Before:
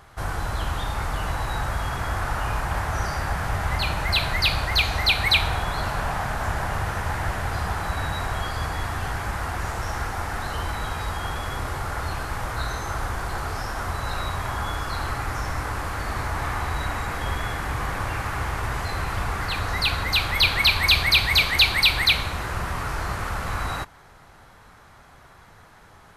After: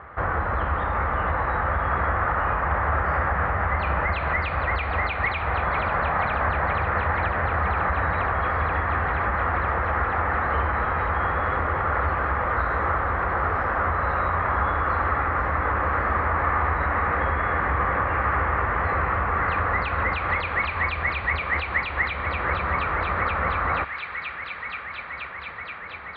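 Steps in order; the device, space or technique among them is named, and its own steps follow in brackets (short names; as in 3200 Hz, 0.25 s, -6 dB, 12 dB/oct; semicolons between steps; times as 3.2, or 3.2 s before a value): thin delay 0.478 s, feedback 83%, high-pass 2000 Hz, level -10 dB; bass amplifier (compressor 5:1, threshold -26 dBFS, peak gain reduction 13 dB; speaker cabinet 67–2100 Hz, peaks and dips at 69 Hz +7 dB, 120 Hz -9 dB, 520 Hz +7 dB, 1200 Hz +7 dB, 1900 Hz +5 dB); gain +5.5 dB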